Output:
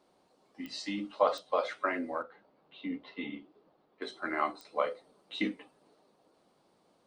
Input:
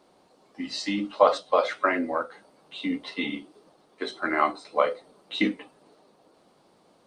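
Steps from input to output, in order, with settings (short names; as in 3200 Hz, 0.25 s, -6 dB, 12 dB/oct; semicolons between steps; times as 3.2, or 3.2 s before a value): 2.22–4.02 air absorption 260 m; pops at 0.66/1.38/4.61, -22 dBFS; gain -8 dB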